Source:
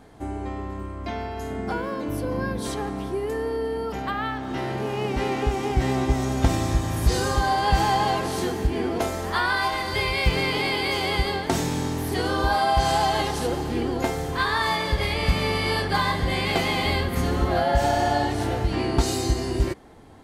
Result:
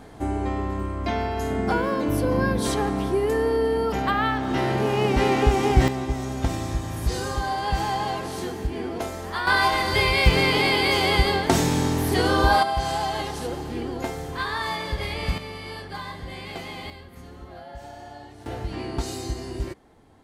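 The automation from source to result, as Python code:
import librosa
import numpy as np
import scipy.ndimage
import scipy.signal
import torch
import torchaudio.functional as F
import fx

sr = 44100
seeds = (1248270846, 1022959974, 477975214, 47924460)

y = fx.gain(x, sr, db=fx.steps((0.0, 5.0), (5.88, -4.5), (9.47, 4.0), (12.63, -4.5), (15.38, -12.0), (16.9, -19.5), (18.46, -7.0)))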